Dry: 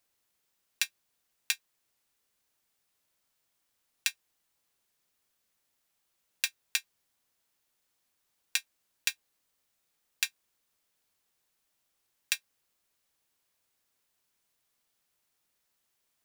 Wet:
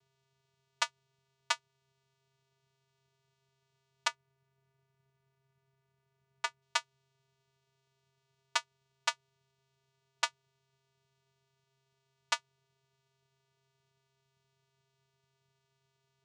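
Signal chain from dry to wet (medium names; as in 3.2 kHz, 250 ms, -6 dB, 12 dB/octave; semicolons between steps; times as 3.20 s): 4.07–6.62 s: tone controls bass +4 dB, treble -14 dB; vocoder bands 4, square 134 Hz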